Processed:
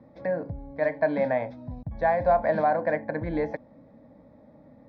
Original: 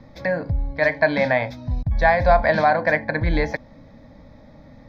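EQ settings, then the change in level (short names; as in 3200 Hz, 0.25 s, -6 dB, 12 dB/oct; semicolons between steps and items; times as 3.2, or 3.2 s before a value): band-pass 400 Hz, Q 0.7; -3.0 dB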